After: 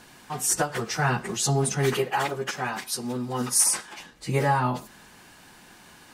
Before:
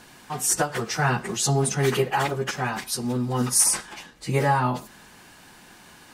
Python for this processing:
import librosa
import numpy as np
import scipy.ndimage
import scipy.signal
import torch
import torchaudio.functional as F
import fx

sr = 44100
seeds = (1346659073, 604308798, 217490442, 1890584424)

y = fx.low_shelf(x, sr, hz=130.0, db=-12.0, at=(1.93, 4.0))
y = y * 10.0 ** (-1.5 / 20.0)